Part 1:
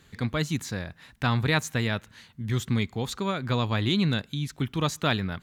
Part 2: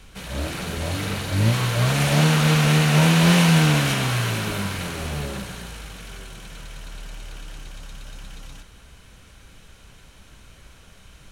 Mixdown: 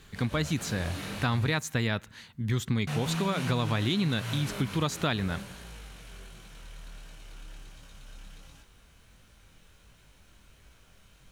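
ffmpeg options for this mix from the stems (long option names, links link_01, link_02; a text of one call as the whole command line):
ffmpeg -i stem1.wav -i stem2.wav -filter_complex "[0:a]volume=1.5dB,asplit=2[link_01][link_02];[1:a]alimiter=limit=-14dB:level=0:latency=1:release=124,acrusher=bits=9:mix=0:aa=0.000001,flanger=delay=18.5:depth=7:speed=1.4,volume=-7dB,asplit=3[link_03][link_04][link_05];[link_03]atrim=end=1.59,asetpts=PTS-STARTPTS,afade=type=out:start_time=1.586:duration=0.004:curve=hsin[link_06];[link_04]atrim=start=1.59:end=2.87,asetpts=PTS-STARTPTS,volume=0[link_07];[link_05]atrim=start=2.87,asetpts=PTS-STARTPTS,afade=type=in:duration=0.004:curve=hsin[link_08];[link_06][link_07][link_08]concat=n=3:v=0:a=1[link_09];[link_02]apad=whole_len=498924[link_10];[link_09][link_10]sidechaincompress=threshold=-26dB:ratio=3:attack=16:release=105[link_11];[link_01][link_11]amix=inputs=2:normalize=0,acompressor=threshold=-24dB:ratio=5" out.wav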